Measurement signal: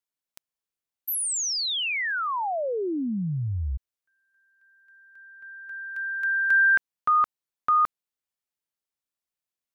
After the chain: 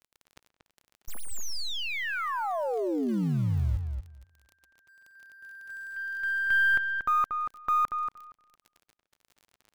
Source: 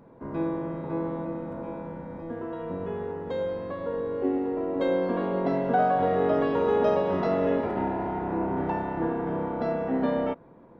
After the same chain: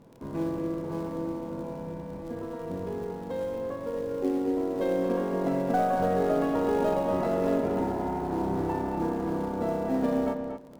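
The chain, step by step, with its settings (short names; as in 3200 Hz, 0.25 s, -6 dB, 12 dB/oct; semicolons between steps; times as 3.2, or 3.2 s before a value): tracing distortion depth 0.033 ms; LPF 3100 Hz 6 dB/oct; low shelf 350 Hz +4.5 dB; in parallel at -11.5 dB: companded quantiser 4-bit; on the sum: crackle 26/s -35 dBFS; darkening echo 0.234 s, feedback 15%, low-pass 2400 Hz, level -5.5 dB; gain -6 dB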